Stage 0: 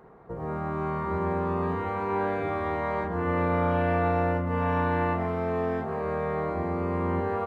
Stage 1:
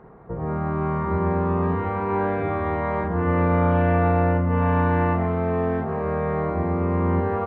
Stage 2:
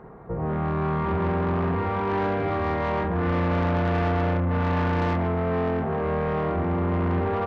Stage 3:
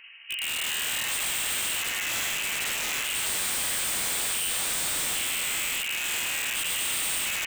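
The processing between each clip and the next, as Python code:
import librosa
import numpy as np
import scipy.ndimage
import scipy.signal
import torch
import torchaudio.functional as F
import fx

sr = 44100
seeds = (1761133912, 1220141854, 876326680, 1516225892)

y1 = fx.bass_treble(x, sr, bass_db=5, treble_db=-15)
y1 = y1 * 10.0 ** (3.5 / 20.0)
y2 = 10.0 ** (-23.0 / 20.0) * np.tanh(y1 / 10.0 ** (-23.0 / 20.0))
y2 = y2 * 10.0 ** (2.5 / 20.0)
y3 = fx.freq_invert(y2, sr, carrier_hz=3000)
y3 = (np.mod(10.0 ** (20.5 / 20.0) * y3 + 1.0, 2.0) - 1.0) / 10.0 ** (20.5 / 20.0)
y3 = y3 * 10.0 ** (-4.0 / 20.0)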